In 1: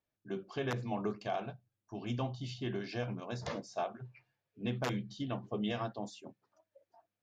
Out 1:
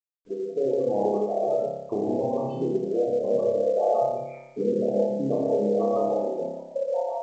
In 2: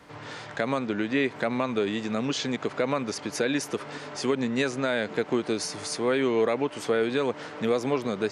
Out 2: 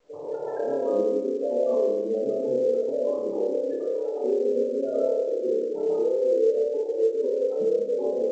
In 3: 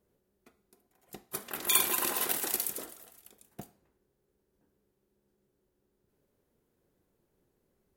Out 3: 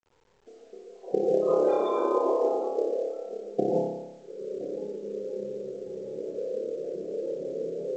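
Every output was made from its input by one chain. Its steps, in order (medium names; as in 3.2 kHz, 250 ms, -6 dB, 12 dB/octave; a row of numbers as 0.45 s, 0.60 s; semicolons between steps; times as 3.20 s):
recorder AGC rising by 19 dB/s; gate -49 dBFS, range -22 dB; band-pass filter 470 Hz, Q 4.9; gated-style reverb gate 200 ms rising, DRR -3.5 dB; peak limiter -22.5 dBFS; spectral gate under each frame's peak -30 dB strong; compression 2:1, threshold -38 dBFS; spectral gate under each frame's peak -20 dB strong; on a send: flutter echo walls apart 5 m, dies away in 0.93 s; on the sum: µ-law 128 kbps 16 kHz; peak normalisation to -12 dBFS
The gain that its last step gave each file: +10.5 dB, +8.5 dB, +14.5 dB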